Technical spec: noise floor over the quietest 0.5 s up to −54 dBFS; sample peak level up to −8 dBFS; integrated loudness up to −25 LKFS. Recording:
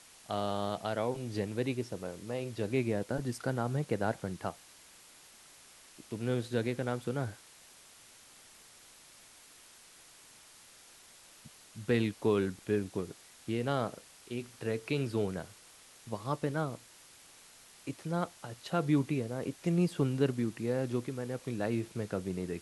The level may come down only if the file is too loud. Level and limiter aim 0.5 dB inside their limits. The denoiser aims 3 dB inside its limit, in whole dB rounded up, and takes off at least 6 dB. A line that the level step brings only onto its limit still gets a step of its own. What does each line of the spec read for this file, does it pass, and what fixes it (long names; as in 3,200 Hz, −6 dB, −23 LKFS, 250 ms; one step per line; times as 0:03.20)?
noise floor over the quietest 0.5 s −57 dBFS: in spec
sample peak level −15.5 dBFS: in spec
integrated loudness −34.5 LKFS: in spec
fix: no processing needed